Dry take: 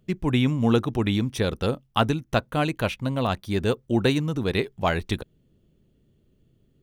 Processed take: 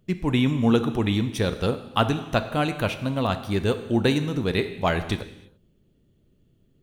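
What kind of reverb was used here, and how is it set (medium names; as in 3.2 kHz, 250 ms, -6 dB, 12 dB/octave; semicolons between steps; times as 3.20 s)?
gated-style reverb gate 360 ms falling, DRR 9 dB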